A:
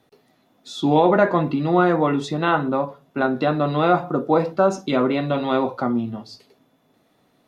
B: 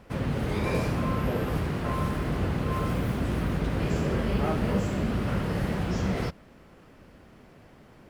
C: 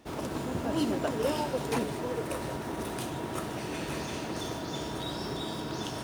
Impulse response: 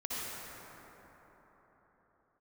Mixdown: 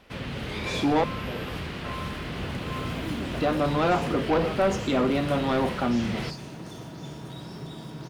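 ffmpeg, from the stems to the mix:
-filter_complex "[0:a]volume=-1.5dB,asplit=3[a][b][c];[a]atrim=end=1.04,asetpts=PTS-STARTPTS,afade=t=out:st=1.036:d=0.004:c=hsin[d];[b]atrim=start=1.04:end=3.37,asetpts=PTS-STARTPTS,volume=0[e];[c]atrim=start=3.37,asetpts=PTS-STARTPTS,afade=t=in:d=0.004:c=hsin[f];[d][e][f]concat=n=3:v=0:a=1[g];[1:a]equalizer=f=3.3k:t=o:w=1.8:g=12,volume=-5.5dB[h];[2:a]equalizer=f=150:w=1.6:g=13,adelay=2300,volume=-8dB[i];[g][h][i]amix=inputs=3:normalize=0,bandreject=f=50:t=h:w=6,bandreject=f=100:t=h:w=6,bandreject=f=150:t=h:w=6,asoftclip=type=tanh:threshold=-17dB"

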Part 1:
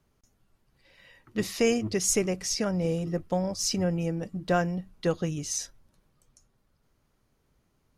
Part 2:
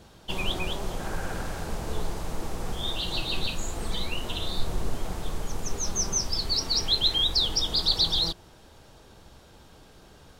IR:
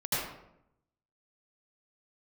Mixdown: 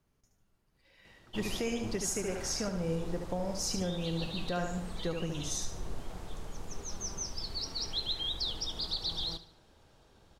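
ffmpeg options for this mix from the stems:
-filter_complex "[0:a]volume=-5.5dB,asplit=2[a][b];[b]volume=-6dB[c];[1:a]highshelf=f=10k:g=-7,adelay=1050,volume=-10dB,asplit=2[d][e];[e]volume=-15dB[f];[c][f]amix=inputs=2:normalize=0,aecho=0:1:73|146|219|292|365:1|0.38|0.144|0.0549|0.0209[g];[a][d][g]amix=inputs=3:normalize=0,alimiter=limit=-23dB:level=0:latency=1:release=203"

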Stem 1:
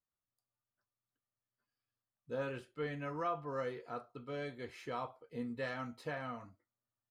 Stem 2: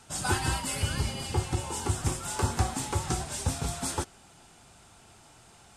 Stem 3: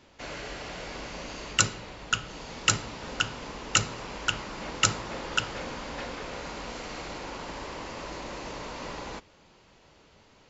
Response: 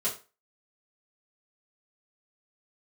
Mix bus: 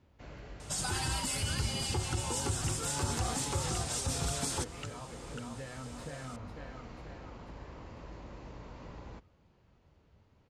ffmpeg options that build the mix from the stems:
-filter_complex "[0:a]volume=0dB,asplit=2[a][b];[b]volume=-10.5dB[c];[1:a]equalizer=f=5.4k:t=o:w=2:g=6.5,alimiter=limit=-24dB:level=0:latency=1:release=85,adelay=600,volume=-1dB[d];[2:a]highshelf=f=2.7k:g=-9.5,volume=-12.5dB[e];[a][e]amix=inputs=2:normalize=0,equalizer=f=78:w=0.55:g=11.5,acompressor=threshold=-42dB:ratio=6,volume=0dB[f];[c]aecho=0:1:493|986|1479|1972|2465|2958|3451|3944:1|0.54|0.292|0.157|0.085|0.0459|0.0248|0.0134[g];[d][f][g]amix=inputs=3:normalize=0,equalizer=f=62:w=0.33:g=3"

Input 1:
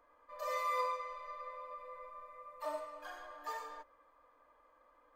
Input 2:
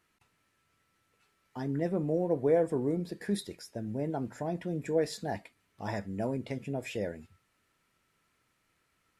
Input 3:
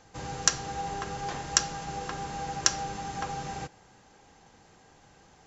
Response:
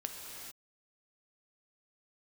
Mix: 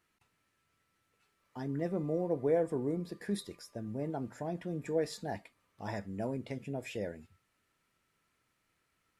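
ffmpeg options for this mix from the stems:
-filter_complex "[0:a]acompressor=threshold=-59dB:ratio=2,adelay=1400,volume=-14dB[a];[1:a]volume=-3.5dB[b];[a][b]amix=inputs=2:normalize=0"

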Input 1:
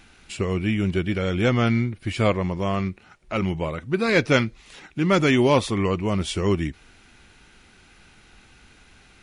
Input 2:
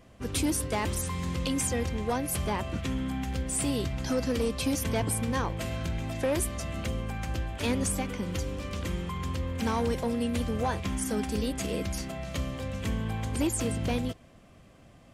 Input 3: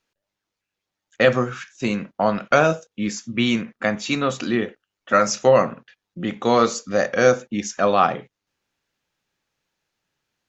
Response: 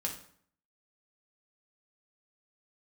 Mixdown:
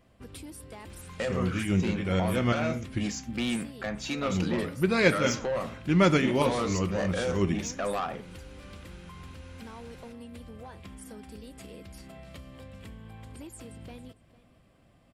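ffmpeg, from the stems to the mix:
-filter_complex "[0:a]adelay=900,volume=-5dB,asplit=3[a][b][c];[a]atrim=end=3.08,asetpts=PTS-STARTPTS,afade=t=out:st=3.076:d=0.004:c=hsin[d];[b]atrim=start=3.08:end=4.03,asetpts=PTS-STARTPTS,volume=0[e];[c]atrim=start=4.03,asetpts=PTS-STARTPTS,afade=t=in:d=0.004:c=hsin[f];[d][e][f]concat=n=3:v=0:a=1,asplit=2[g][h];[h]volume=-9dB[i];[1:a]equalizer=f=6.3k:t=o:w=0.21:g=-10.5,acompressor=threshold=-36dB:ratio=4,volume=-7dB,asplit=2[j][k];[k]volume=-19dB[l];[2:a]alimiter=limit=-11dB:level=0:latency=1:release=273,asoftclip=type=tanh:threshold=-19.5dB,volume=-5dB,asplit=2[m][n];[n]apad=whole_len=446418[o];[g][o]sidechaincompress=threshold=-44dB:ratio=8:attack=9.2:release=122[p];[3:a]atrim=start_sample=2205[q];[i][q]afir=irnorm=-1:irlink=0[r];[l]aecho=0:1:453:1[s];[p][j][m][r][s]amix=inputs=5:normalize=0"

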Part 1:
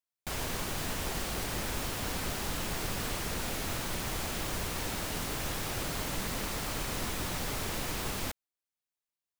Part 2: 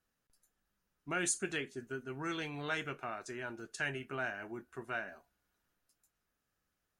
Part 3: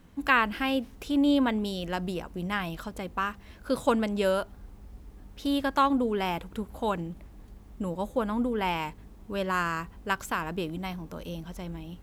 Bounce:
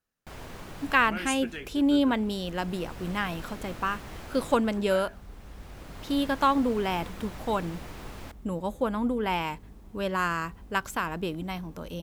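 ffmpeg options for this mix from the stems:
-filter_complex "[0:a]highshelf=f=3.5k:g=-11.5,volume=-5.5dB[a];[1:a]volume=-2dB,asplit=3[b][c][d];[b]atrim=end=2.12,asetpts=PTS-STARTPTS,afade=t=out:st=2.116:d=0.004:c=hsin[e];[c]atrim=start=2.12:end=4.54,asetpts=PTS-STARTPTS,volume=0[f];[d]atrim=start=4.54,asetpts=PTS-STARTPTS,afade=t=in:d=0.004:c=hsin[g];[e][f][g]concat=n=3:v=0:a=1,asplit=2[h][i];[2:a]adelay=650,volume=0.5dB[j];[i]apad=whole_len=414284[k];[a][k]sidechaincompress=threshold=-50dB:ratio=8:attack=5.7:release=986[l];[l][h][j]amix=inputs=3:normalize=0"

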